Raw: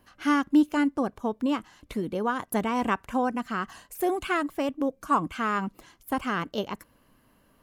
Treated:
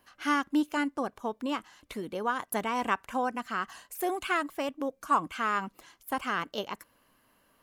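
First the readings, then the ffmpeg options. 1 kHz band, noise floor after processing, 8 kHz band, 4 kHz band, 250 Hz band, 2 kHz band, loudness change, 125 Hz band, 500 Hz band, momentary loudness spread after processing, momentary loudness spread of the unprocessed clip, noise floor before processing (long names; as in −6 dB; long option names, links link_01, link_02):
−1.5 dB, −69 dBFS, 0.0 dB, 0.0 dB, −7.5 dB, −0.5 dB, −3.5 dB, −9.0 dB, −4.5 dB, 10 LU, 10 LU, −64 dBFS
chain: -af "lowshelf=frequency=370:gain=-11.5"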